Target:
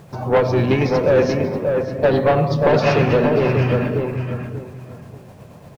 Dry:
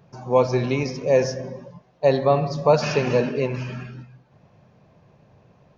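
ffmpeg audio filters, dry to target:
-filter_complex "[0:a]asplit=3[s0][s1][s2];[s1]asetrate=33038,aresample=44100,atempo=1.33484,volume=0.178[s3];[s2]asetrate=35002,aresample=44100,atempo=1.25992,volume=0.282[s4];[s0][s3][s4]amix=inputs=3:normalize=0,asplit=2[s5][s6];[s6]acompressor=threshold=0.0501:ratio=6,volume=1.06[s7];[s5][s7]amix=inputs=2:normalize=0,asoftclip=type=tanh:threshold=0.178,lowpass=3500,acrusher=bits=9:mix=0:aa=0.000001,tremolo=f=8.3:d=0.33,asplit=2[s8][s9];[s9]adelay=586,lowpass=f=1700:p=1,volume=0.631,asplit=2[s10][s11];[s11]adelay=586,lowpass=f=1700:p=1,volume=0.25,asplit=2[s12][s13];[s13]adelay=586,lowpass=f=1700:p=1,volume=0.25[s14];[s10][s12][s14]amix=inputs=3:normalize=0[s15];[s8][s15]amix=inputs=2:normalize=0,volume=2"

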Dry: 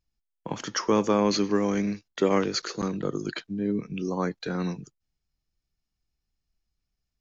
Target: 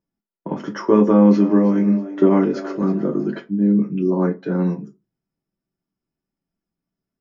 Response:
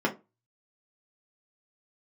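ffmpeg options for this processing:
-filter_complex "[0:a]equalizer=f=3400:w=0.62:g=-6,asettb=1/sr,asplit=3[s0][s1][s2];[s0]atrim=end=0.984[s3];[s1]atrim=start=0.98:end=3.38,asetpts=PTS-STARTPTS,afade=t=in:d=0.004:c=qsin,afade=t=out:st=2.396:d=0.004:c=qsin,asplit=4[s4][s5][s6][s7];[s5]adelay=323,afreqshift=93,volume=0.168[s8];[s6]adelay=646,afreqshift=186,volume=0.0537[s9];[s7]adelay=969,afreqshift=279,volume=0.0172[s10];[s4][s8][s9][s10]amix=inputs=4:normalize=0,atrim=end_sample=105840[s11];[s2]atrim=start=3.376[s12];[s3][s11]acrossfade=d=0.004:c1=hsin:c2=qsin[s13];[s13][s12]acrossfade=d=0.004:c1=qsin:c2=hsin[s14];[1:a]atrim=start_sample=2205[s15];[s14][s15]afir=irnorm=-1:irlink=0,volume=0.422"

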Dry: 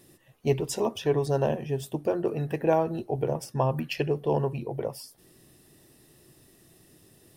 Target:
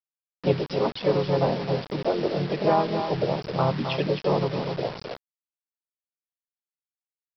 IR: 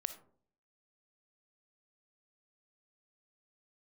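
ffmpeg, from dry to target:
-filter_complex "[0:a]asplit=4[s0][s1][s2][s3];[s1]asetrate=33038,aresample=44100,atempo=1.33484,volume=0.178[s4];[s2]asetrate=55563,aresample=44100,atempo=0.793701,volume=0.708[s5];[s3]asetrate=58866,aresample=44100,atempo=0.749154,volume=0.224[s6];[s0][s4][s5][s6]amix=inputs=4:normalize=0,afftfilt=real='re*gte(hypot(re,im),0.02)':imag='im*gte(hypot(re,im),0.02)':win_size=1024:overlap=0.75,aecho=1:1:264:0.398,aresample=11025,acrusher=bits=5:mix=0:aa=0.000001,aresample=44100"

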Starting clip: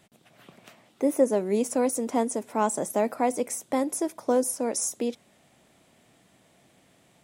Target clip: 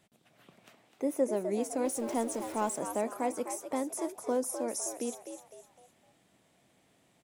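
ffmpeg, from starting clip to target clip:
-filter_complex "[0:a]asettb=1/sr,asplit=3[s0][s1][s2];[s0]atrim=end=1.854[s3];[s1]atrim=start=1.85:end=2.76,asetpts=PTS-STARTPTS,afade=t=in:d=0.004:c=qsin,afade=t=out:st=0.906:d=0.004:c=qsin,aeval=exprs='val(0)+0.5*0.015*sgn(val(0))':c=same[s4];[s2]atrim=start=2.756[s5];[s3][s4]acrossfade=d=0.004:c1=hsin:c2=qsin[s6];[s6][s5]acrossfade=d=0.004:c1=qsin:c2=hsin,asplit=2[s7][s8];[s8]asplit=4[s9][s10][s11][s12];[s9]adelay=254,afreqshift=85,volume=0.355[s13];[s10]adelay=508,afreqshift=170,volume=0.138[s14];[s11]adelay=762,afreqshift=255,volume=0.0537[s15];[s12]adelay=1016,afreqshift=340,volume=0.0211[s16];[s13][s14][s15][s16]amix=inputs=4:normalize=0[s17];[s7][s17]amix=inputs=2:normalize=0,volume=0.422"

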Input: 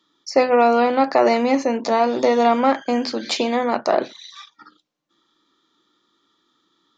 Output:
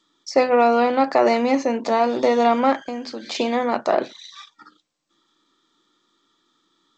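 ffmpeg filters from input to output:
-filter_complex "[0:a]asettb=1/sr,asplit=3[s0][s1][s2];[s0]atrim=end=2.764[s3];[s1]atrim=start=2.76:end=3.35,asetpts=PTS-STARTPTS,afade=t=in:d=0.004:c=qsin,afade=t=out:st=0.586:d=0.004:c=qsin,acompressor=threshold=0.0251:ratio=2[s4];[s2]atrim=start=3.346[s5];[s3][s4]acrossfade=d=0.004:c1=hsin:c2=qsin[s6];[s6][s5]acrossfade=d=0.004:c1=qsin:c2=hsin,volume=0.891" -ar 16000 -c:a g722

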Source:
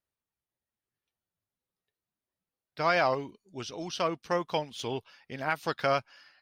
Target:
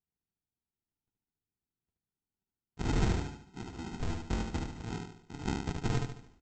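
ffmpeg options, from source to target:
-af "aresample=16000,acrusher=samples=28:mix=1:aa=0.000001,aresample=44100,aecho=1:1:73|146|219|292|365:0.631|0.265|0.111|0.0467|0.0196,volume=0.562"

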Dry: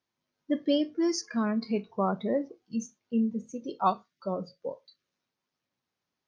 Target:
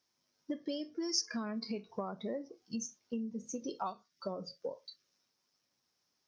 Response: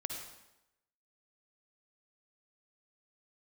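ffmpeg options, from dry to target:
-af "bass=f=250:g=-3,treble=f=4000:g=3,acompressor=threshold=0.0158:ratio=12,equalizer=f=5400:t=o:w=0.41:g=11.5,volume=1.12"

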